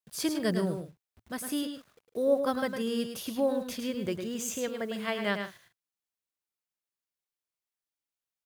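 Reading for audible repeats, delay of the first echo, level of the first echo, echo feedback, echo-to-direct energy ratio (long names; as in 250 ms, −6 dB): 2, 106 ms, −7.0 dB, repeats not evenly spaced, −6.5 dB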